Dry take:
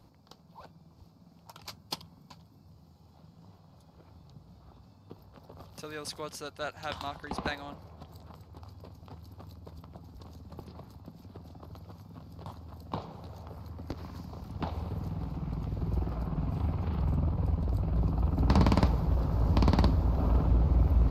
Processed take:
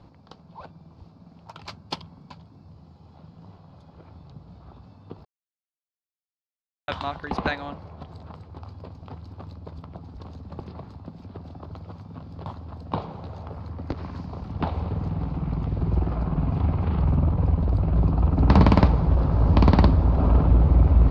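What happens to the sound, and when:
5.25–6.88 mute
whole clip: LPF 3500 Hz 12 dB/oct; gain +8 dB

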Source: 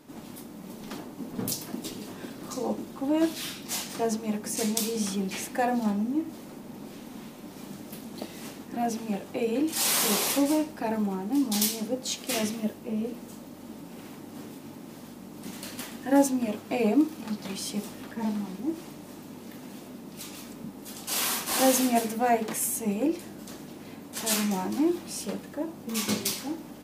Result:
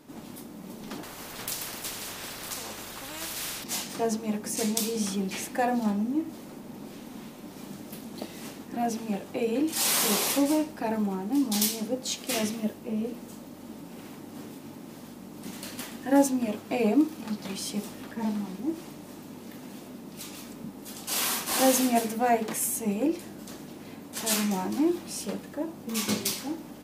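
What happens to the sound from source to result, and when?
1.03–3.64 spectral compressor 4:1

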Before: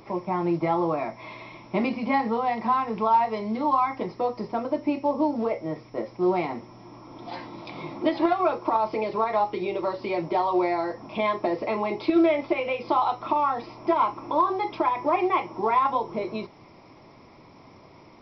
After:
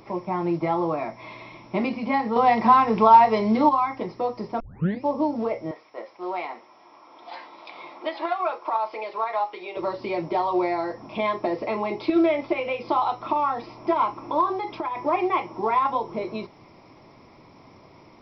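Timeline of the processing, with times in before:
2.36–3.69 gain +7.5 dB
4.6 tape start 0.43 s
5.71–9.77 BPF 660–4700 Hz
14.59–15.05 compressor 4:1, threshold -25 dBFS

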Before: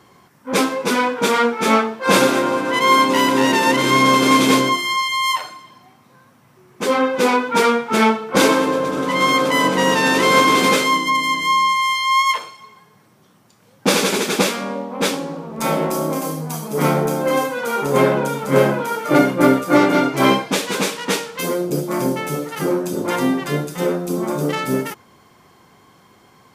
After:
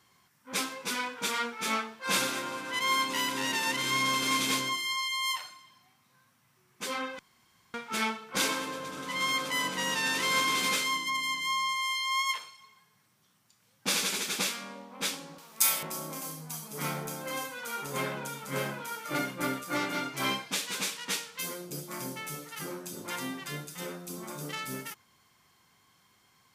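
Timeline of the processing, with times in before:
7.19–7.74 room tone
15.38–15.83 tilt +4.5 dB/oct
whole clip: passive tone stack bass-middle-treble 5-5-5; gain -1.5 dB

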